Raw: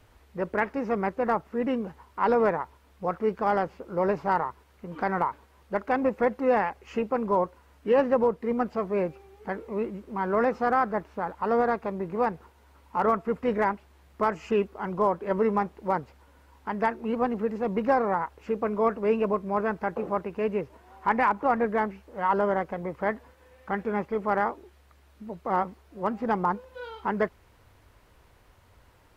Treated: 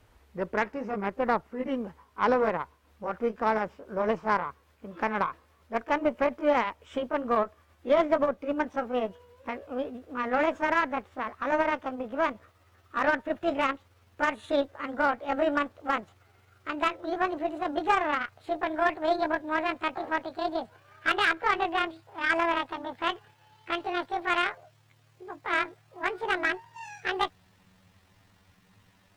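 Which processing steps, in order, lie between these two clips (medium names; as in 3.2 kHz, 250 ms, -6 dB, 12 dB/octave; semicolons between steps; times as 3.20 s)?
pitch bend over the whole clip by +11.5 st starting unshifted; Chebyshev shaper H 6 -31 dB, 7 -29 dB, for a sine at -9.5 dBFS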